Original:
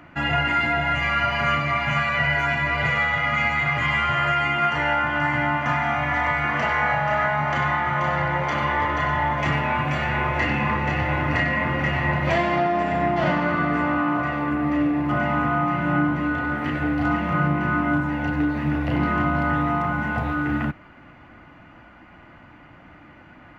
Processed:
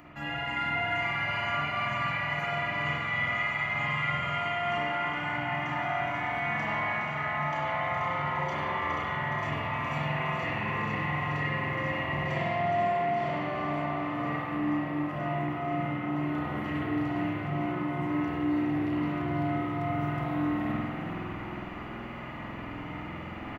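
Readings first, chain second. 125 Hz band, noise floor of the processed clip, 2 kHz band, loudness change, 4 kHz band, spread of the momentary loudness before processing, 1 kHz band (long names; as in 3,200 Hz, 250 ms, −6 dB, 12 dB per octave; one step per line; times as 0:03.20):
−8.0 dB, −39 dBFS, −8.5 dB, −8.5 dB, −7.0 dB, 3 LU, −8.0 dB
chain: high-shelf EQ 6,400 Hz +11 dB
notch filter 1,500 Hz, Q 6.7
reversed playback
downward compressor 10 to 1, threshold −36 dBFS, peak gain reduction 19 dB
reversed playback
echo with shifted repeats 416 ms, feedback 57%, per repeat +31 Hz, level −7 dB
spring reverb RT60 1.5 s, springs 47 ms, chirp 30 ms, DRR −6 dB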